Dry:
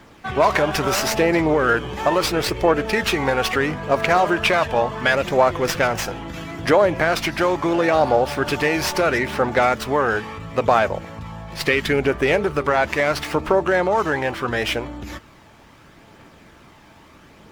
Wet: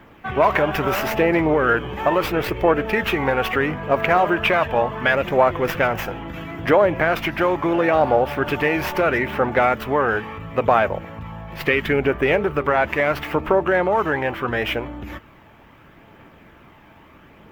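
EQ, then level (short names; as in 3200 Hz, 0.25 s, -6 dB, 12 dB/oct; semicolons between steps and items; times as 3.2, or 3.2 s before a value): band shelf 6400 Hz -13 dB; 0.0 dB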